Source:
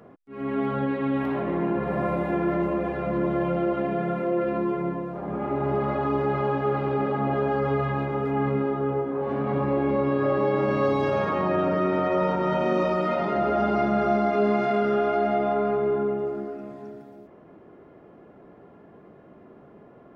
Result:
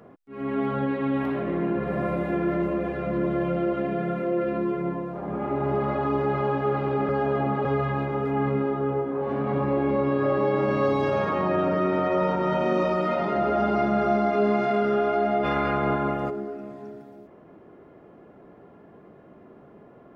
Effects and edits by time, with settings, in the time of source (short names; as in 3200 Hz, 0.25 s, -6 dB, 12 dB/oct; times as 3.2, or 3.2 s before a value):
1.3–4.86 bell 890 Hz -7.5 dB 0.47 oct
7.09–7.65 reverse
15.43–16.29 spectral limiter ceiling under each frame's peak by 22 dB